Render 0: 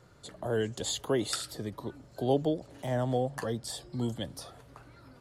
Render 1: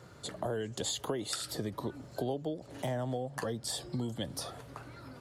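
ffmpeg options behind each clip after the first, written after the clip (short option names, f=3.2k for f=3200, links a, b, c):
-af "highpass=70,acompressor=threshold=-37dB:ratio=10,volume=5.5dB"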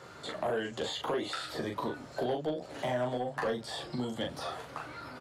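-filter_complex "[0:a]acrossover=split=3200[a][b];[b]acompressor=threshold=-52dB:ratio=4:attack=1:release=60[c];[a][c]amix=inputs=2:normalize=0,aecho=1:1:13|40:0.562|0.631,asplit=2[d][e];[e]highpass=f=720:p=1,volume=14dB,asoftclip=type=tanh:threshold=-20.5dB[f];[d][f]amix=inputs=2:normalize=0,lowpass=f=3.8k:p=1,volume=-6dB,volume=-1.5dB"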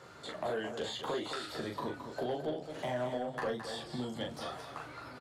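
-af "aecho=1:1:217:0.376,volume=-3.5dB"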